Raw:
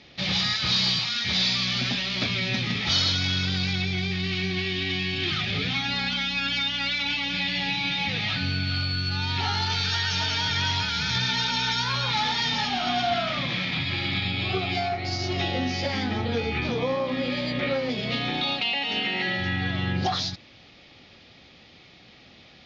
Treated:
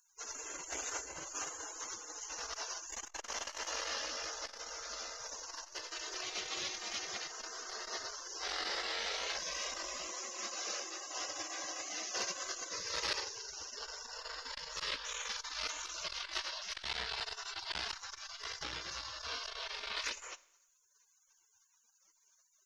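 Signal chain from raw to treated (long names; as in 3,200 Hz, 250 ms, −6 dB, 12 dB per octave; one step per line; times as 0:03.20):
gate on every frequency bin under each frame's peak −30 dB weak
0:10.07–0:12.46: high-pass filter 120 Hz 12 dB per octave
four-comb reverb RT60 0.8 s, combs from 27 ms, DRR 19 dB
saturating transformer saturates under 1,700 Hz
level +10.5 dB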